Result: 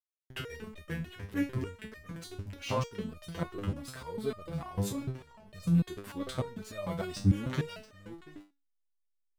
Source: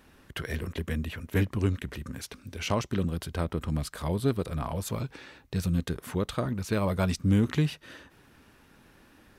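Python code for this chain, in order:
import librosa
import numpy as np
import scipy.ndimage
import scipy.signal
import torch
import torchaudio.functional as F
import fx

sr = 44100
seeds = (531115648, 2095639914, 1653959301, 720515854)

y = x + 10.0 ** (-12.5 / 20.0) * np.pad(x, (int(686 * sr / 1000.0), 0))[:len(x)]
y = fx.backlash(y, sr, play_db=-38.0)
y = fx.resonator_held(y, sr, hz=6.7, low_hz=100.0, high_hz=610.0)
y = F.gain(torch.from_numpy(y), 8.5).numpy()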